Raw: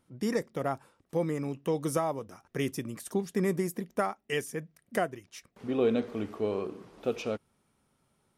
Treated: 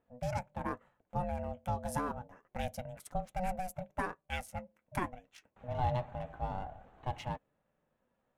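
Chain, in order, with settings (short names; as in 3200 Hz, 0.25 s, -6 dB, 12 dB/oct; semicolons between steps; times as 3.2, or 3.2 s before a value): Wiener smoothing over 9 samples; flange 0.29 Hz, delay 2.2 ms, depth 6.2 ms, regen -55%; ring modulator 370 Hz; gain +1 dB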